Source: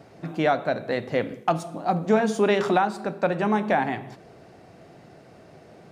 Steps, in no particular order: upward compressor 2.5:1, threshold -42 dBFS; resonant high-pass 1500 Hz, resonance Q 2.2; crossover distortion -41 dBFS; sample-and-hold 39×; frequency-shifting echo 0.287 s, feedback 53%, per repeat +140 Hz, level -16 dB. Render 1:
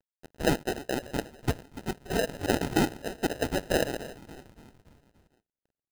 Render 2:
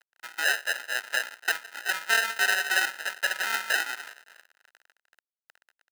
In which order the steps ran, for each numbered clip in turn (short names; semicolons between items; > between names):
resonant high-pass > upward compressor > crossover distortion > frequency-shifting echo > sample-and-hold; frequency-shifting echo > crossover distortion > upward compressor > sample-and-hold > resonant high-pass